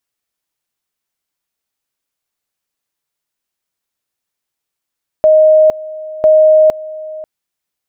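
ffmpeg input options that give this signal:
ffmpeg -f lavfi -i "aevalsrc='pow(10,(-4-19*gte(mod(t,1),0.46))/20)*sin(2*PI*623*t)':duration=2:sample_rate=44100" out.wav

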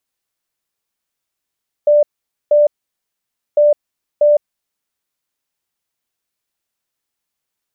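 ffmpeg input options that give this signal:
ffmpeg -f lavfi -i "aevalsrc='0.447*sin(2*PI*591*t)*clip(min(mod(mod(t,1.7),0.64),0.16-mod(mod(t,1.7),0.64))/0.005,0,1)*lt(mod(t,1.7),1.28)':duration=3.4:sample_rate=44100" out.wav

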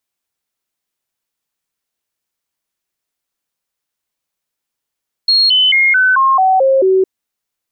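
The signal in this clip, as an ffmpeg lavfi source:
ffmpeg -f lavfi -i "aevalsrc='0.422*clip(min(mod(t,0.22),0.22-mod(t,0.22))/0.005,0,1)*sin(2*PI*4280*pow(2,-floor(t/0.22)/2)*mod(t,0.22))':duration=1.76:sample_rate=44100" out.wav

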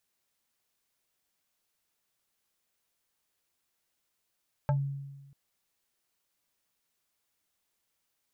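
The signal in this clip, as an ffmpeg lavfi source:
ffmpeg -f lavfi -i "aevalsrc='0.0794*pow(10,-3*t/1.21)*sin(2*PI*139*t+1.1*pow(10,-3*t/0.14)*sin(2*PI*5.26*139*t))':duration=0.64:sample_rate=44100" out.wav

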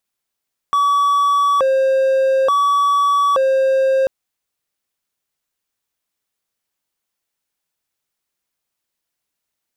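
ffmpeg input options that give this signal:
ffmpeg -f lavfi -i "aevalsrc='0.316*(1-4*abs(mod((836*t+304/0.57*(0.5-abs(mod(0.57*t,1)-0.5)))+0.25,1)-0.5))':duration=3.34:sample_rate=44100" out.wav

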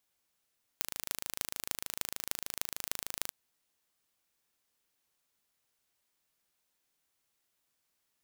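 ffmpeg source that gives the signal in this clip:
ffmpeg -f lavfi -i "aevalsrc='0.668*eq(mod(n,1658),0)*(0.5+0.5*eq(mod(n,13264),0))':duration=2.51:sample_rate=44100" out.wav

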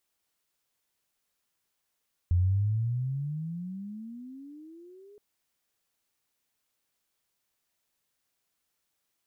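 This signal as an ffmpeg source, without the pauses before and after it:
ffmpeg -f lavfi -i "aevalsrc='pow(10,(-20-30*t/2.87)/20)*sin(2*PI*85.8*2.87/(27.5*log(2)/12)*(exp(27.5*log(2)/12*t/2.87)-1))':duration=2.87:sample_rate=44100" out.wav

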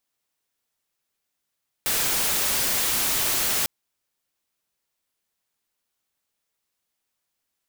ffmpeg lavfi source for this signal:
ffmpeg -f lavfi -i "anoisesrc=color=white:amplitude=0.116:duration=1.8:sample_rate=44100:seed=1" out.wav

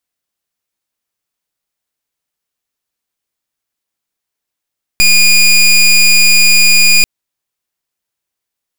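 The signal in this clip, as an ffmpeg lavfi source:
ffmpeg -f lavfi -i "aevalsrc='0.473*(2*lt(mod(2440*t,1),0.2)-1)':duration=2.04:sample_rate=44100" out.wav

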